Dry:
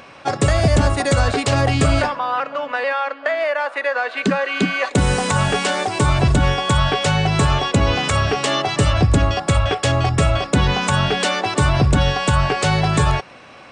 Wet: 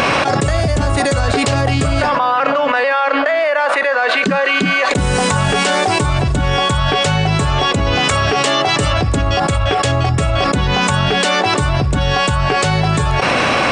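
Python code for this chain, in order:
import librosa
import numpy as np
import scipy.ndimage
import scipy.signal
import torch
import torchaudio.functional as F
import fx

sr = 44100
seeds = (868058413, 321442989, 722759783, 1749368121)

y = fx.low_shelf(x, sr, hz=160.0, db=-6.5, at=(8.0, 9.18))
y = fx.env_flatten(y, sr, amount_pct=100)
y = y * 10.0 ** (-3.0 / 20.0)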